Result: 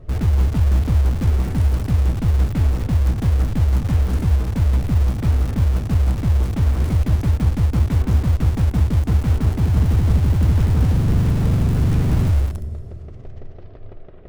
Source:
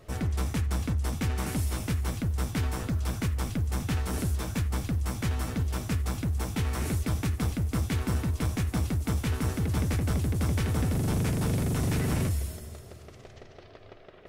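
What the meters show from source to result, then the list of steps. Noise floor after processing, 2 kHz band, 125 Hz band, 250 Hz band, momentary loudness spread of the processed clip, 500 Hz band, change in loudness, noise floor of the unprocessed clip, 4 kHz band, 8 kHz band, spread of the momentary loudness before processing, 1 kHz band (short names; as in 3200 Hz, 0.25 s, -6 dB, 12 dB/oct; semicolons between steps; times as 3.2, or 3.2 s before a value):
-36 dBFS, +1.5 dB, +11.5 dB, +7.0 dB, 3 LU, +5.0 dB, +11.0 dB, -50 dBFS, +1.5 dB, -3.0 dB, 3 LU, +4.5 dB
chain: tilt -4 dB/oct; in parallel at -10.5 dB: wrapped overs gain 19 dB; on the sum: gain -2 dB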